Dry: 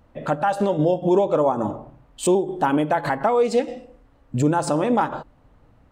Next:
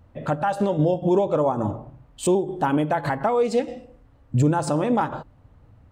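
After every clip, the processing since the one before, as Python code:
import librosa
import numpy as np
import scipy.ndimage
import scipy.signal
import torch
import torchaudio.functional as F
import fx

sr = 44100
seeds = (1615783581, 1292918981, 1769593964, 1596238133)

y = fx.peak_eq(x, sr, hz=93.0, db=10.5, octaves=1.3)
y = F.gain(torch.from_numpy(y), -2.5).numpy()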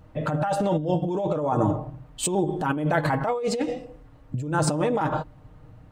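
y = x + 0.54 * np.pad(x, (int(6.5 * sr / 1000.0), 0))[:len(x)]
y = fx.over_compress(y, sr, threshold_db=-24.0, ratio=-1.0)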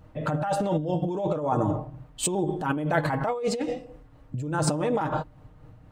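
y = fx.tremolo_shape(x, sr, shape='triangle', hz=4.1, depth_pct=40)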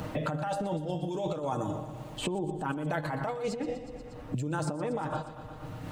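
y = fx.echo_feedback(x, sr, ms=119, feedback_pct=56, wet_db=-15.5)
y = fx.band_squash(y, sr, depth_pct=100)
y = F.gain(torch.from_numpy(y), -7.0).numpy()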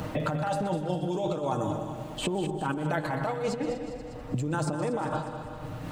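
y = fx.echo_feedback(x, sr, ms=201, feedback_pct=49, wet_db=-10)
y = F.gain(torch.from_numpy(y), 2.5).numpy()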